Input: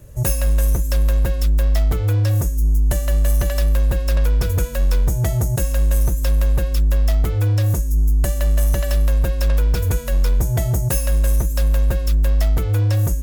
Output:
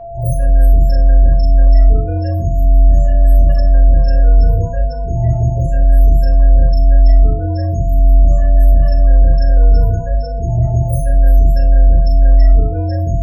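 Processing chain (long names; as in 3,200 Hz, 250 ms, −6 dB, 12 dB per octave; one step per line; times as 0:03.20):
every overlapping window played backwards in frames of 83 ms
spectral peaks only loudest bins 16
steady tone 680 Hz −34 dBFS
rectangular room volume 250 cubic metres, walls furnished, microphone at 1.7 metres
level +2 dB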